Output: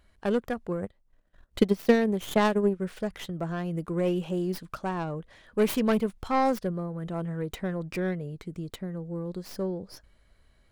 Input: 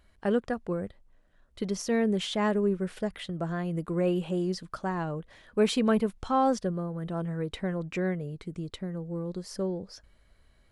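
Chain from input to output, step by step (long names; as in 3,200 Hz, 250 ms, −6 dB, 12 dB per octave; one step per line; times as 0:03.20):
stylus tracing distortion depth 0.34 ms
0:00.82–0:02.80: transient designer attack +12 dB, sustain −9 dB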